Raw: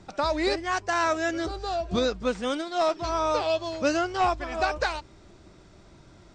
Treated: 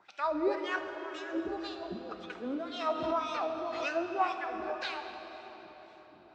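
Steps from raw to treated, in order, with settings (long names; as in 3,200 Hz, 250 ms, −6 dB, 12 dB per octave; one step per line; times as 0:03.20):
low-shelf EQ 240 Hz −5 dB
0:00.76–0:02.30: compressor whose output falls as the input rises −32 dBFS, ratio −0.5
LFO wah 1.9 Hz 240–3,200 Hz, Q 2.3
convolution reverb RT60 4.7 s, pre-delay 8 ms, DRR 5 dB
0:02.89–0:03.94: background raised ahead of every attack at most 44 dB per second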